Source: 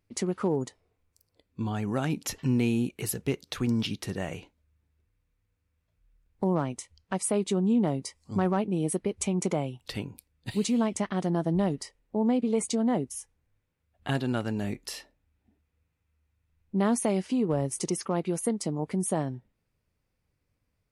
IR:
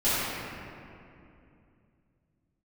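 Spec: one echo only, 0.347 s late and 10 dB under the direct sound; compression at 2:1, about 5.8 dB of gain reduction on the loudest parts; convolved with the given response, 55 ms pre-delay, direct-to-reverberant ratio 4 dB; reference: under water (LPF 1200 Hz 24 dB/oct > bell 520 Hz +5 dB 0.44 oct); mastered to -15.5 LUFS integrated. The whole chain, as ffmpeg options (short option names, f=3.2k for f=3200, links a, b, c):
-filter_complex "[0:a]acompressor=threshold=-32dB:ratio=2,aecho=1:1:347:0.316,asplit=2[a][b];[1:a]atrim=start_sample=2205,adelay=55[c];[b][c]afir=irnorm=-1:irlink=0,volume=-19dB[d];[a][d]amix=inputs=2:normalize=0,lowpass=f=1.2k:w=0.5412,lowpass=f=1.2k:w=1.3066,equalizer=f=520:t=o:w=0.44:g=5,volume=16.5dB"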